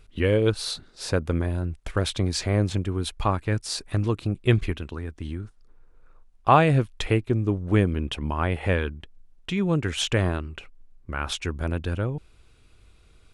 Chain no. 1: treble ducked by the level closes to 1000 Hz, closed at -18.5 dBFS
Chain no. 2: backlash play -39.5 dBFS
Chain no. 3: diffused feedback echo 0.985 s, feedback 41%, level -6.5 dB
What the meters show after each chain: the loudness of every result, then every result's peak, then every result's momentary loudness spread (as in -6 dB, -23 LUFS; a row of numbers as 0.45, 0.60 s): -26.0, -26.0, -25.5 LUFS; -7.0, -4.0, -4.0 dBFS; 13, 13, 11 LU